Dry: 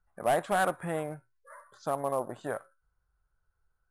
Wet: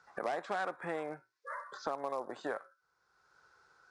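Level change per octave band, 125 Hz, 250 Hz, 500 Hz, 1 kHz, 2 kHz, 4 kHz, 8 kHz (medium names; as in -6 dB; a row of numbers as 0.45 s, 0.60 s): -14.5 dB, -7.0 dB, -7.0 dB, -7.0 dB, -5.0 dB, -6.0 dB, -14.5 dB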